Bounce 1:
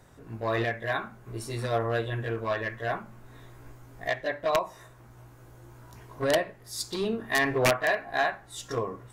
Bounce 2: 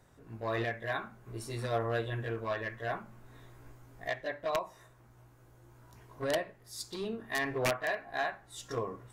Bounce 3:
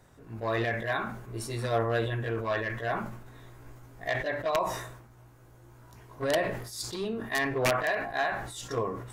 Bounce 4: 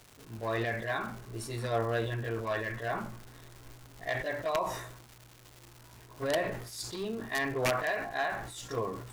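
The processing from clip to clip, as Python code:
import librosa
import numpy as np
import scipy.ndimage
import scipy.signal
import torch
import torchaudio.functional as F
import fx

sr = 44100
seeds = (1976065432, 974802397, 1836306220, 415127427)

y1 = fx.rider(x, sr, range_db=10, speed_s=2.0)
y1 = y1 * librosa.db_to_amplitude(-7.0)
y2 = fx.sustainer(y1, sr, db_per_s=60.0)
y2 = y2 * librosa.db_to_amplitude(4.0)
y3 = fx.dmg_crackle(y2, sr, seeds[0], per_s=370.0, level_db=-38.0)
y3 = y3 * librosa.db_to_amplitude(-3.0)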